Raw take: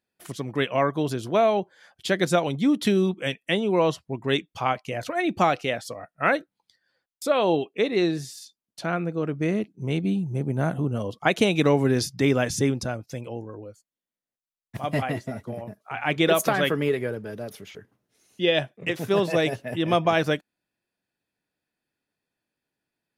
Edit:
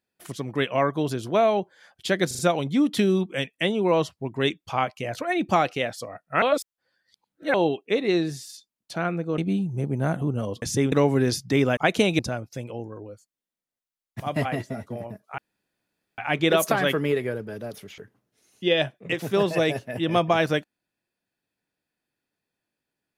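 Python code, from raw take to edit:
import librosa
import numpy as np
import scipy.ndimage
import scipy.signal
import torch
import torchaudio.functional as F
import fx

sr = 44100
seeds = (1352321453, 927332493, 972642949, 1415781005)

y = fx.edit(x, sr, fx.stutter(start_s=2.27, slice_s=0.04, count=4),
    fx.reverse_span(start_s=6.3, length_s=1.12),
    fx.cut(start_s=9.26, length_s=0.69),
    fx.swap(start_s=11.19, length_s=0.42, other_s=12.46, other_length_s=0.3),
    fx.insert_room_tone(at_s=15.95, length_s=0.8), tone=tone)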